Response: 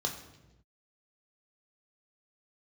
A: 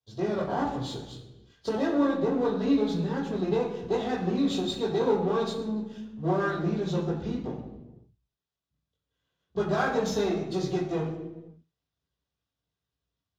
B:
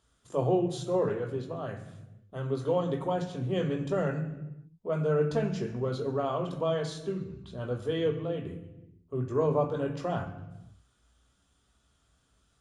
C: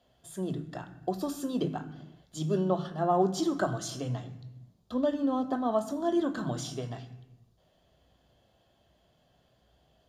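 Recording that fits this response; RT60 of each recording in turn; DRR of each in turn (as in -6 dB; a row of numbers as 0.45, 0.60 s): B; not exponential, not exponential, not exponential; -7.5, 2.5, 7.5 dB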